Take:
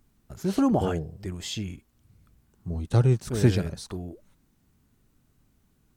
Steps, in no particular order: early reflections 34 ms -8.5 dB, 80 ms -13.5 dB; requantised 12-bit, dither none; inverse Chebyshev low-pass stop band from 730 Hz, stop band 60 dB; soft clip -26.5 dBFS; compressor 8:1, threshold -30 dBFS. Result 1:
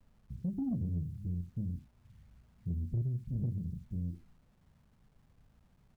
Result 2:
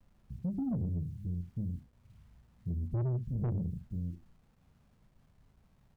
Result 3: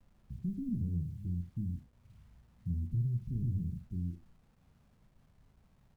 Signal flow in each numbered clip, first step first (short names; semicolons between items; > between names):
inverse Chebyshev low-pass > compressor > early reflections > requantised > soft clip; inverse Chebyshev low-pass > requantised > early reflections > soft clip > compressor; soft clip > inverse Chebyshev low-pass > compressor > requantised > early reflections